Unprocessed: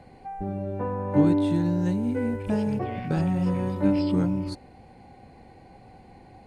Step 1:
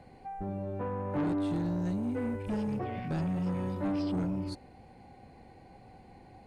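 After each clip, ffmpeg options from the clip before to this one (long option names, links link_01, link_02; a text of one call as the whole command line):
ffmpeg -i in.wav -af "asoftclip=type=tanh:threshold=-23dB,volume=-4dB" out.wav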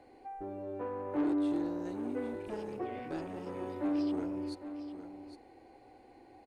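ffmpeg -i in.wav -af "lowshelf=frequency=240:width_type=q:width=3:gain=-8.5,aecho=1:1:808:0.282,volume=-4dB" out.wav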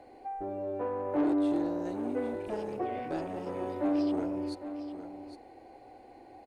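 ffmpeg -i in.wav -af "equalizer=frequency=650:width_type=o:width=0.69:gain=6,volume=2.5dB" out.wav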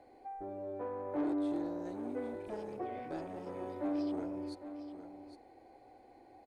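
ffmpeg -i in.wav -af "bandreject=frequency=2800:width=12,volume=-6.5dB" out.wav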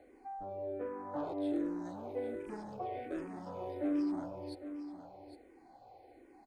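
ffmpeg -i in.wav -filter_complex "[0:a]asplit=2[link_01][link_02];[link_02]afreqshift=-1.3[link_03];[link_01][link_03]amix=inputs=2:normalize=1,volume=3dB" out.wav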